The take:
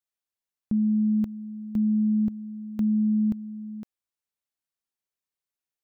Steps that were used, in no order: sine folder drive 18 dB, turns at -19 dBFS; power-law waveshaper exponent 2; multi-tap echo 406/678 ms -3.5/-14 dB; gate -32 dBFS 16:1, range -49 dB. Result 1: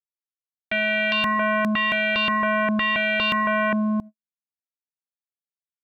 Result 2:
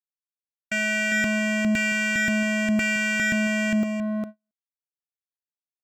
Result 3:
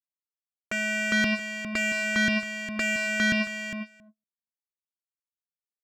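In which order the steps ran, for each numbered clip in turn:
gate > power-law waveshaper > multi-tap echo > sine folder; sine folder > power-law waveshaper > multi-tap echo > gate; gate > sine folder > multi-tap echo > power-law waveshaper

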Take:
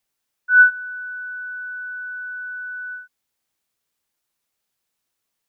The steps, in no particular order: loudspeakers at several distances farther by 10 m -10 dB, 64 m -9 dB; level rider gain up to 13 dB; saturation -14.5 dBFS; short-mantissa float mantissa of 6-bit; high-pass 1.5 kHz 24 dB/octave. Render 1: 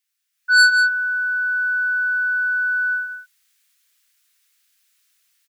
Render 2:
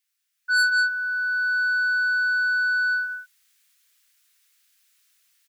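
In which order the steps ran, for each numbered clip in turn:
saturation > level rider > high-pass > short-mantissa float > loudspeakers at several distances; short-mantissa float > loudspeakers at several distances > level rider > saturation > high-pass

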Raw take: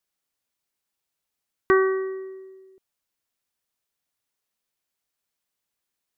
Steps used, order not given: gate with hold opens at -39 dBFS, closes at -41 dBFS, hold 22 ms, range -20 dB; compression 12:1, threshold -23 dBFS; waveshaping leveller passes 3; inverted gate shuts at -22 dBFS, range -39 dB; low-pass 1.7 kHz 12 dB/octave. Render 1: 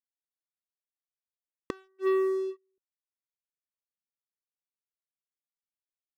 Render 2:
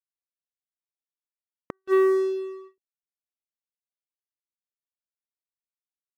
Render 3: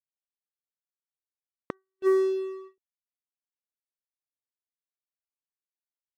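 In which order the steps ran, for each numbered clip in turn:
gate with hold > low-pass > inverted gate > compression > waveshaping leveller; low-pass > compression > inverted gate > waveshaping leveller > gate with hold; low-pass > inverted gate > compression > waveshaping leveller > gate with hold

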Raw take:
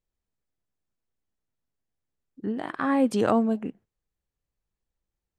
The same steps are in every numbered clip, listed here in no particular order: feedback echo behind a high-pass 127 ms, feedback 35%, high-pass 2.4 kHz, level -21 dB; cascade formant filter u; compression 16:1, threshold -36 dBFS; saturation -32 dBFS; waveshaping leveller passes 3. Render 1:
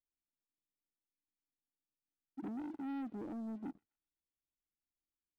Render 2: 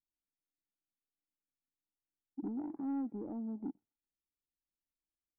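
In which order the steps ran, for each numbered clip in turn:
compression > saturation > cascade formant filter > waveshaping leveller > feedback echo behind a high-pass; compression > waveshaping leveller > cascade formant filter > saturation > feedback echo behind a high-pass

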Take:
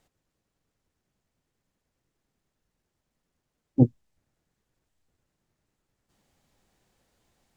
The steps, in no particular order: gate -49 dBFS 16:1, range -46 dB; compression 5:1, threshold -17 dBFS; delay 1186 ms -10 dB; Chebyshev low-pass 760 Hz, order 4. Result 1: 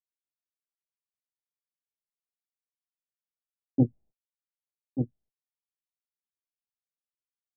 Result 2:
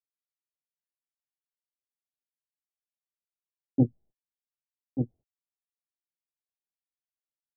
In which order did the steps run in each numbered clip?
gate > delay > compression > Chebyshev low-pass; delay > gate > compression > Chebyshev low-pass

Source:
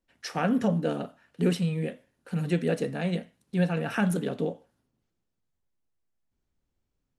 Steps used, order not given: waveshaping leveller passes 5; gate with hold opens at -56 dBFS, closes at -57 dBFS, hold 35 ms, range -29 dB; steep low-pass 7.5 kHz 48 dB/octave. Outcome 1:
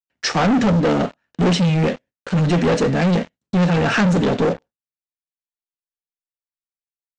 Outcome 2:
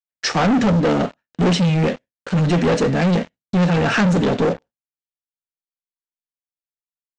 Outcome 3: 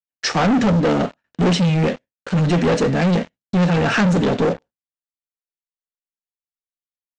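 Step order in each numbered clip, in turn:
gate with hold > waveshaping leveller > steep low-pass; waveshaping leveller > steep low-pass > gate with hold; waveshaping leveller > gate with hold > steep low-pass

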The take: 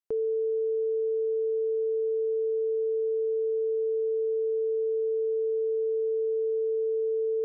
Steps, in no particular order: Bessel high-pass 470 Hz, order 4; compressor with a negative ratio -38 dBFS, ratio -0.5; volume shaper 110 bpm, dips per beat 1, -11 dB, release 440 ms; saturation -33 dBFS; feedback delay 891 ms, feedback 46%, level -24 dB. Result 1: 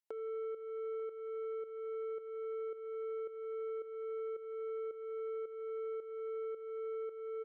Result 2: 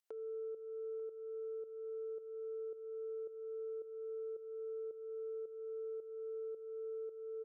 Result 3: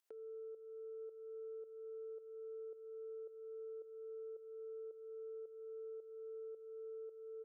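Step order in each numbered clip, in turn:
Bessel high-pass > saturation > compressor with a negative ratio > feedback delay > volume shaper; Bessel high-pass > compressor with a negative ratio > saturation > feedback delay > volume shaper; feedback delay > compressor with a negative ratio > saturation > volume shaper > Bessel high-pass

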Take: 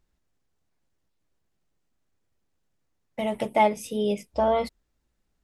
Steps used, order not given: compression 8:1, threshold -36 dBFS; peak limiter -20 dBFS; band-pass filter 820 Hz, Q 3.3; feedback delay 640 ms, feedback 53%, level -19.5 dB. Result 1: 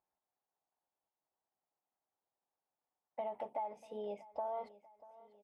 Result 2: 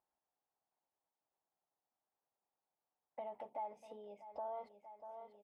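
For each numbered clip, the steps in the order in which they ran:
peak limiter > band-pass filter > compression > feedback delay; peak limiter > feedback delay > compression > band-pass filter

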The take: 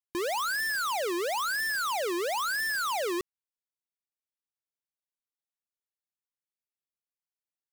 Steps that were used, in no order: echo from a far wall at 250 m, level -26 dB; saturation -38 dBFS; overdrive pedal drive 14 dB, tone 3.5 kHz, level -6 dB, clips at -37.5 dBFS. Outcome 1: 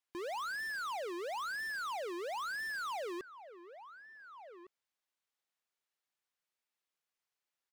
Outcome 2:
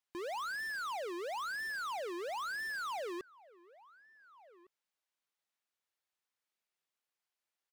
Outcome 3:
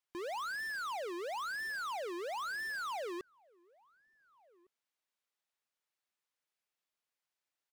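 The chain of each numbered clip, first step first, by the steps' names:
echo from a far wall > saturation > overdrive pedal; saturation > echo from a far wall > overdrive pedal; saturation > overdrive pedal > echo from a far wall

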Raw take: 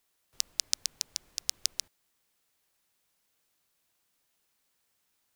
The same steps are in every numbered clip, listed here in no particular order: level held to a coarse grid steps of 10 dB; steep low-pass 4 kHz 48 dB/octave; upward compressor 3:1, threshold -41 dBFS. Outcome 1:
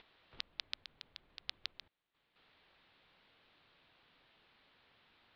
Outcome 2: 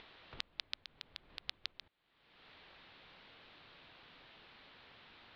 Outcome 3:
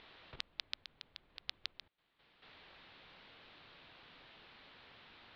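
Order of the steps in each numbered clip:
upward compressor > steep low-pass > level held to a coarse grid; steep low-pass > level held to a coarse grid > upward compressor; steep low-pass > upward compressor > level held to a coarse grid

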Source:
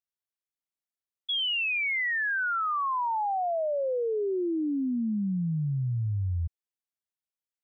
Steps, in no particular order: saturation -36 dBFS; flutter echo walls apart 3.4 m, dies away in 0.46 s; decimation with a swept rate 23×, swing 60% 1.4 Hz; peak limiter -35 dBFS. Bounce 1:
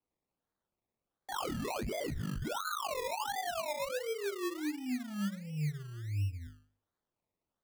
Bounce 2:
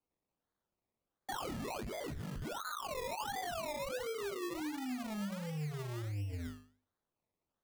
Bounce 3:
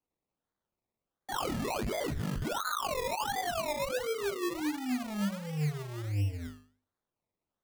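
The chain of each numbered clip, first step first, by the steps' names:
peak limiter > saturation > flutter echo > decimation with a swept rate; saturation > flutter echo > peak limiter > decimation with a swept rate; saturation > peak limiter > flutter echo > decimation with a swept rate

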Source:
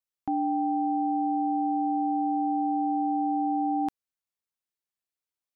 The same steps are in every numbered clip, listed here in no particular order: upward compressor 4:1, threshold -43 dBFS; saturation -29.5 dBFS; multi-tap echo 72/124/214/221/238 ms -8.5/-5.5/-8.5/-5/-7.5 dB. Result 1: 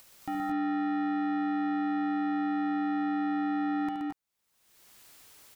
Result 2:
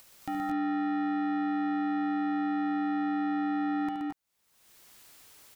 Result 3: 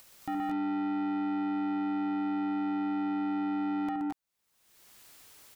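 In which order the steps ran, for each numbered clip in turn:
upward compressor > saturation > multi-tap echo; saturation > upward compressor > multi-tap echo; upward compressor > multi-tap echo > saturation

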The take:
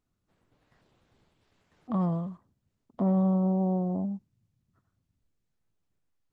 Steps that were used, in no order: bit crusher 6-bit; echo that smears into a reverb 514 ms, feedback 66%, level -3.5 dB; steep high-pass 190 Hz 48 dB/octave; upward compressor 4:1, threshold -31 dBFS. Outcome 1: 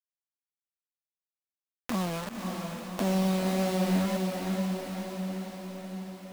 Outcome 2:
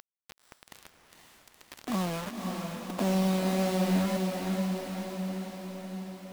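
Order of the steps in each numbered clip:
steep high-pass > bit crusher > upward compressor > echo that smears into a reverb; upward compressor > steep high-pass > bit crusher > echo that smears into a reverb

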